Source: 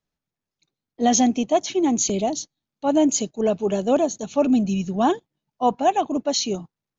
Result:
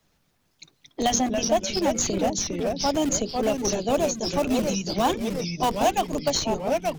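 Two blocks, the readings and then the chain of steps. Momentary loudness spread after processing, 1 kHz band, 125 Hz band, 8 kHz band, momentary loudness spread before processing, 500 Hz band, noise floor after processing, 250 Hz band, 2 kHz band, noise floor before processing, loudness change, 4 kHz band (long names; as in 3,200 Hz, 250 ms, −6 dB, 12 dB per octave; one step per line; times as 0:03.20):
3 LU, −2.5 dB, 0.0 dB, can't be measured, 8 LU, −2.0 dB, −69 dBFS, −5.0 dB, +3.0 dB, below −85 dBFS, −2.5 dB, +2.0 dB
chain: mains-hum notches 60/120/180/240/300/360/420/480/540 Hz
in parallel at −8.5 dB: comparator with hysteresis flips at −17.5 dBFS
on the sum: harmonic and percussive parts rebalanced percussive +8 dB
delay with pitch and tempo change per echo 150 ms, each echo −2 semitones, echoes 3, each echo −6 dB
multiband upward and downward compressor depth 70%
level −8.5 dB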